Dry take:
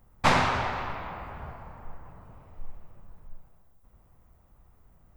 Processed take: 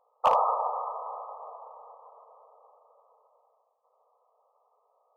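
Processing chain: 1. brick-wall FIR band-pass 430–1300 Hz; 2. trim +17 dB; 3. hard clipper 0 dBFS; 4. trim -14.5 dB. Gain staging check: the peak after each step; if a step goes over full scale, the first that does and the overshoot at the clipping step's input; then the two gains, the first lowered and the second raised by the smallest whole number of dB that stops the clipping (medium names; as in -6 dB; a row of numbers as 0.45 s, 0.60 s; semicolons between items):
-11.5 dBFS, +5.5 dBFS, 0.0 dBFS, -14.5 dBFS; step 2, 5.5 dB; step 2 +11 dB, step 4 -8.5 dB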